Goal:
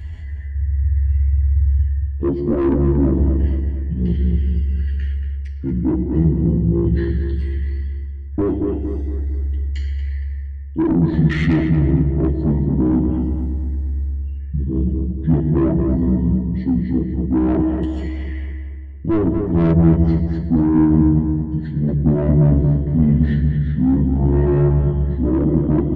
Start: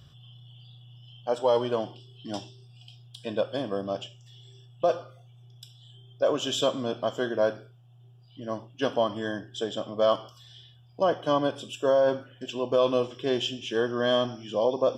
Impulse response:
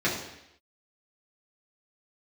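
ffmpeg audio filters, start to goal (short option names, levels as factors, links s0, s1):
-filter_complex "[0:a]afwtdn=0.0355,acontrast=24,asetrate=25442,aresample=44100,areverse,acompressor=mode=upward:threshold=0.0447:ratio=2.5,areverse,asplit=2[s0][s1];[s1]adelay=12,volume=0.708[s2];[s0][s2]amix=inputs=2:normalize=0,asplit=2[s3][s4];[1:a]atrim=start_sample=2205,adelay=102[s5];[s4][s5]afir=irnorm=-1:irlink=0,volume=0.0501[s6];[s3][s6]amix=inputs=2:normalize=0,asoftclip=type=tanh:threshold=0.15,bass=f=250:g=14,treble=f=4000:g=3,asplit=2[s7][s8];[s8]adelay=231,lowpass=f=1800:p=1,volume=0.562,asplit=2[s9][s10];[s10]adelay=231,lowpass=f=1800:p=1,volume=0.48,asplit=2[s11][s12];[s12]adelay=231,lowpass=f=1800:p=1,volume=0.48,asplit=2[s13][s14];[s14]adelay=231,lowpass=f=1800:p=1,volume=0.48,asplit=2[s15][s16];[s16]adelay=231,lowpass=f=1800:p=1,volume=0.48,asplit=2[s17][s18];[s18]adelay=231,lowpass=f=1800:p=1,volume=0.48[s19];[s7][s9][s11][s13][s15][s17][s19]amix=inputs=7:normalize=0,volume=0.891"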